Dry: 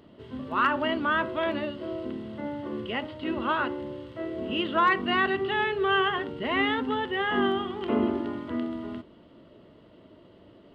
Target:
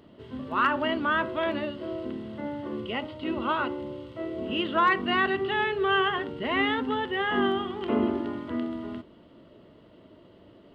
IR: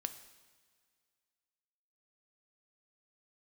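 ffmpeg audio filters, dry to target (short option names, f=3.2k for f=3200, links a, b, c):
-filter_complex "[0:a]asettb=1/sr,asplit=3[a][b][c];[a]atrim=end=2.754[d];[b]atrim=start=2.75:end=4.47,asetpts=PTS-STARTPTS,afade=t=in:d=0.004:c=qsin,afade=t=out:st=1.716:d=0.004:c=qsin,bandreject=f=1.7k:w=5.5[e];[c]atrim=start=4.466[f];[d][e]acrossfade=d=0.004:c1=hsin:c2=qsin[g];[g][f]acrossfade=d=0.004:c1=qsin:c2=hsin"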